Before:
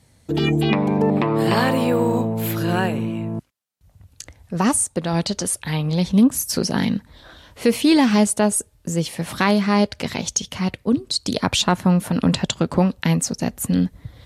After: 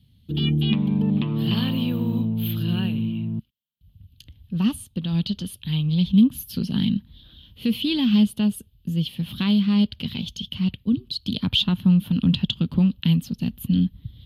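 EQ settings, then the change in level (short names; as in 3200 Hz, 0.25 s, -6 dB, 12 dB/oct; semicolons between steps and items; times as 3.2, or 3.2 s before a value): EQ curve 220 Hz 0 dB, 330 Hz -12 dB, 670 Hz -25 dB, 2100 Hz -19 dB, 3100 Hz +4 dB, 7800 Hz -29 dB, 13000 Hz -3 dB; dynamic EQ 1100 Hz, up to +6 dB, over -46 dBFS, Q 0.94; notch 5700 Hz, Q 13; 0.0 dB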